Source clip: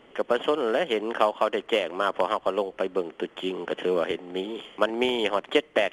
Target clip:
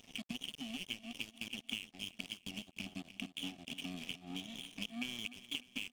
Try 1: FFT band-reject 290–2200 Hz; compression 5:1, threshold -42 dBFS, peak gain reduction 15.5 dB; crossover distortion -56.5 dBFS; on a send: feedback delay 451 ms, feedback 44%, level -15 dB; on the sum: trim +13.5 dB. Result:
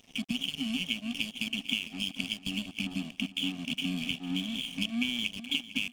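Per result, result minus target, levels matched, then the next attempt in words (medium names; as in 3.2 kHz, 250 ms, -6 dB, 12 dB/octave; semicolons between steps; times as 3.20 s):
echo 151 ms late; compression: peak gain reduction -8.5 dB
FFT band-reject 290–2200 Hz; compression 5:1, threshold -42 dBFS, peak gain reduction 15.5 dB; crossover distortion -56.5 dBFS; on a send: feedback delay 300 ms, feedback 44%, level -15 dB; on the sum: trim +13.5 dB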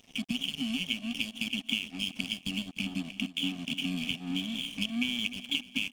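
compression: peak gain reduction -8.5 dB
FFT band-reject 290–2200 Hz; compression 5:1, threshold -52.5 dBFS, peak gain reduction 24 dB; crossover distortion -56.5 dBFS; on a send: feedback delay 300 ms, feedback 44%, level -15 dB; on the sum: trim +13.5 dB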